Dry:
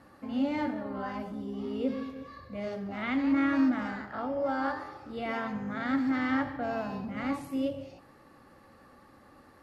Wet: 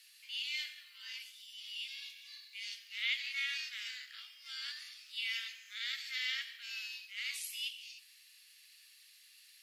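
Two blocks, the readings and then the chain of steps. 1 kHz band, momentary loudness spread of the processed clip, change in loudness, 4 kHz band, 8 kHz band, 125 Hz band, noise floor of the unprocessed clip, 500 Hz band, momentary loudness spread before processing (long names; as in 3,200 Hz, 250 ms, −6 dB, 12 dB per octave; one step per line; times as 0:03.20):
−28.5 dB, 22 LU, −7.5 dB, +12.0 dB, can't be measured, below −40 dB, −57 dBFS, below −40 dB, 11 LU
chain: Butterworth high-pass 2,600 Hz 36 dB per octave
level +12.5 dB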